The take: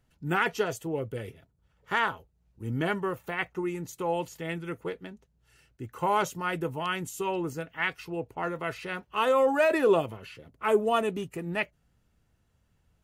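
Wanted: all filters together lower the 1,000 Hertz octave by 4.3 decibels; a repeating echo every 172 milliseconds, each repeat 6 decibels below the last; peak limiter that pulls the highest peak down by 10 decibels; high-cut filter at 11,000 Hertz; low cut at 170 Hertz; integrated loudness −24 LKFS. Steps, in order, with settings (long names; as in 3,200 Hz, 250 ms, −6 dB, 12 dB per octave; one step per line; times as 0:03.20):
high-pass filter 170 Hz
low-pass filter 11,000 Hz
parametric band 1,000 Hz −5.5 dB
brickwall limiter −24 dBFS
repeating echo 172 ms, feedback 50%, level −6 dB
level +10.5 dB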